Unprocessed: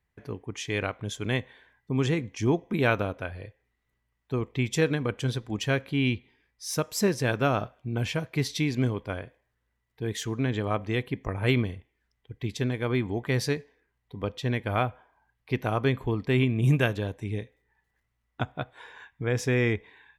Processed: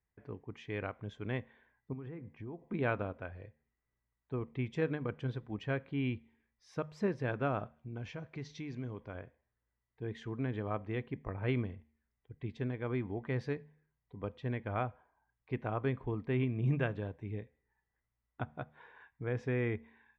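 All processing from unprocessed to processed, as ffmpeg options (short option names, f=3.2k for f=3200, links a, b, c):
-filter_complex "[0:a]asettb=1/sr,asplit=3[a][b][c];[a]atrim=end=1.934[d];[b]atrim=start=1.93:end=2.68,asetpts=PTS-STARTPTS,afade=t=in:d=0.004:c=qsin,afade=t=out:st=0.746:d=0.004:c=qsin,lowpass=1.9k,acompressor=threshold=-34dB:ratio=4:attack=3.2:release=140:knee=1:detection=peak[e];[c]atrim=start=2.676[f];[d][e]acrossfade=d=0.004:c1=hsin:c2=qsin[g];[g][f]acrossfade=d=0.004:c1=qsin:c2=hsin,asettb=1/sr,asplit=3[h][i][j];[h]atrim=end=7.764[k];[i]atrim=start=7.76:end=9.15,asetpts=PTS-STARTPTS,afade=t=in:d=0.004:c=qsin,afade=t=out:st=1.386:d=0.004:c=qsin,acompressor=threshold=-33dB:ratio=2:attack=3.2:release=140:knee=1:detection=peak,lowpass=f=6.3k:t=q:w=3.9[l];[j]atrim=start=9.146[m];[k][l]acrossfade=d=0.004:c1=hsin:c2=qsin[n];[n][m]acrossfade=d=0.004:c1=qsin:c2=hsin,lowpass=2k,bandreject=f=75.91:t=h:w=4,bandreject=f=151.82:t=h:w=4,bandreject=f=227.73:t=h:w=4,volume=-8.5dB"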